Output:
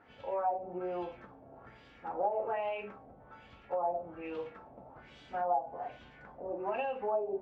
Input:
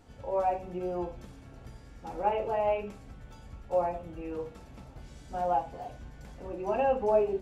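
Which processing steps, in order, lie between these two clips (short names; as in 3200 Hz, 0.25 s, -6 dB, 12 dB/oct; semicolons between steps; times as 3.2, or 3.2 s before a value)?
HPF 440 Hz 6 dB/oct; compressor 10:1, threshold -32 dBFS, peak gain reduction 11.5 dB; LFO low-pass sine 1.2 Hz 660–3300 Hz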